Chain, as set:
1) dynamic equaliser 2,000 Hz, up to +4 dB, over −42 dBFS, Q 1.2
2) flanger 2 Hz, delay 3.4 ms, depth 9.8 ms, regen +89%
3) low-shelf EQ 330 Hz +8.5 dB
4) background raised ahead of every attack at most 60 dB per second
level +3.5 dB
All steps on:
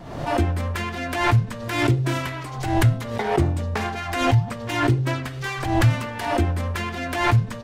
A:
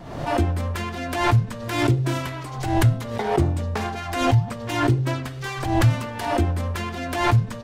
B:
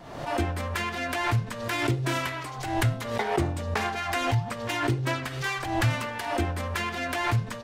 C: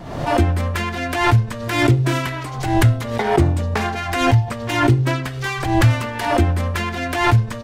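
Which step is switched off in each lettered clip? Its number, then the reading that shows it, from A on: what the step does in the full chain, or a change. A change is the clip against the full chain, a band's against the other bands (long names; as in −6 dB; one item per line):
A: 1, 2 kHz band −2.5 dB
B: 3, 125 Hz band −4.5 dB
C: 2, change in integrated loudness +4.0 LU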